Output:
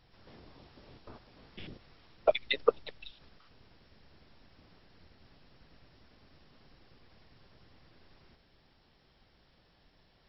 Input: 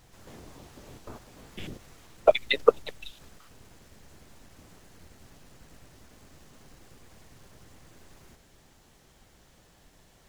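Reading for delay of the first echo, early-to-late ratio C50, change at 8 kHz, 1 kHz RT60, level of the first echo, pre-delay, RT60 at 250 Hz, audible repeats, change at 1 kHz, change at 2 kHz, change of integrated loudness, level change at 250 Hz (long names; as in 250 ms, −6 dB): no echo audible, no reverb audible, below −25 dB, no reverb audible, no echo audible, no reverb audible, no reverb audible, no echo audible, −6.5 dB, −5.5 dB, −6.5 dB, −7.0 dB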